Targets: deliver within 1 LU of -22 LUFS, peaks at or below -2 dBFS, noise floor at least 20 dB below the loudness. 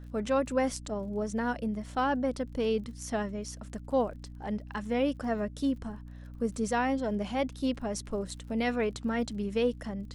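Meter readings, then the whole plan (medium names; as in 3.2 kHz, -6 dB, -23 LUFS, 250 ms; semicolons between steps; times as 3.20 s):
tick rate 38 per s; hum 60 Hz; highest harmonic 300 Hz; hum level -43 dBFS; loudness -32.0 LUFS; peak level -15.0 dBFS; loudness target -22.0 LUFS
-> de-click; de-hum 60 Hz, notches 5; trim +10 dB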